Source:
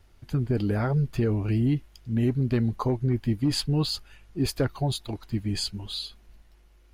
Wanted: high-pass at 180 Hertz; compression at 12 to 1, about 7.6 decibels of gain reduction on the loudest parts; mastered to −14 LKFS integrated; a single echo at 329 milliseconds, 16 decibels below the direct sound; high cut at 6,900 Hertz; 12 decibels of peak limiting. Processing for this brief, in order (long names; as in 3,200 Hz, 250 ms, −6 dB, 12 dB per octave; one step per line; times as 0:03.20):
high-pass filter 180 Hz
low-pass filter 6,900 Hz
downward compressor 12 to 1, threshold −29 dBFS
brickwall limiter −31 dBFS
single-tap delay 329 ms −16 dB
level +26.5 dB